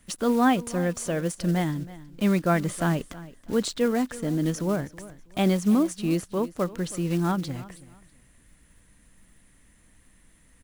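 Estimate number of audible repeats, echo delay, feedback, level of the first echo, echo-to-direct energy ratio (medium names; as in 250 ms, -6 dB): 2, 323 ms, 25%, -18.0 dB, -17.5 dB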